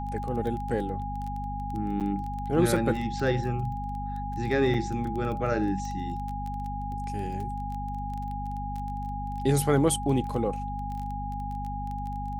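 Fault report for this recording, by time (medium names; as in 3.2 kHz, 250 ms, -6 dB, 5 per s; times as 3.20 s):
crackle 15 per s -33 dBFS
hum 50 Hz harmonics 5 -35 dBFS
whine 820 Hz -34 dBFS
2.00–2.01 s: dropout 7.8 ms
4.74 s: dropout 3.4 ms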